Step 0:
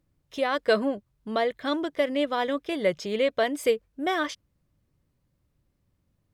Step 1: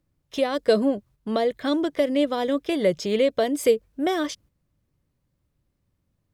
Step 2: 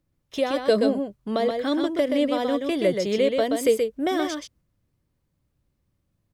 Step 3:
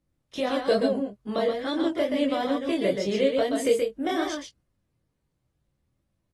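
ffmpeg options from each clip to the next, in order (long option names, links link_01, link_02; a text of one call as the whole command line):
ffmpeg -i in.wav -filter_complex "[0:a]agate=range=-7dB:threshold=-54dB:ratio=16:detection=peak,acrossover=split=610|4000[link_01][link_02][link_03];[link_02]acompressor=threshold=-38dB:ratio=6[link_04];[link_01][link_04][link_03]amix=inputs=3:normalize=0,volume=6dB" out.wav
ffmpeg -i in.wav -af "aecho=1:1:127:0.562,volume=-1dB" out.wav
ffmpeg -i in.wav -filter_complex "[0:a]flanger=delay=19.5:depth=6.4:speed=2.3,asplit=2[link_01][link_02];[link_02]adelay=15,volume=-10dB[link_03];[link_01][link_03]amix=inputs=2:normalize=0" -ar 44100 -c:a aac -b:a 32k out.aac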